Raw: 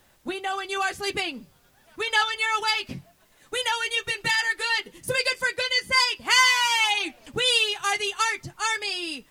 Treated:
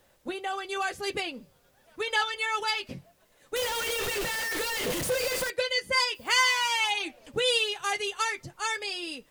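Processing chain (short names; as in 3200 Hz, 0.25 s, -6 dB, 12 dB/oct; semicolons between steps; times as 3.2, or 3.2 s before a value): 3.56–5.5 infinite clipping; 6.14–6.7 added noise violet -53 dBFS; bell 520 Hz +8.5 dB 0.54 oct; gain -5 dB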